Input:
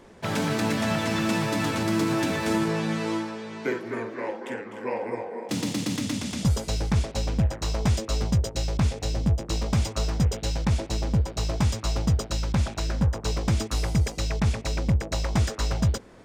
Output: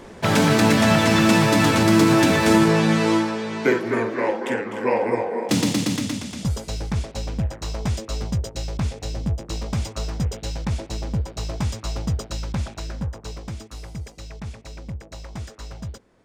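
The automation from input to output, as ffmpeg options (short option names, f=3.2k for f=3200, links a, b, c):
-af "volume=9dB,afade=t=out:st=5.48:d=0.8:silence=0.298538,afade=t=out:st=12.44:d=1.17:silence=0.354813"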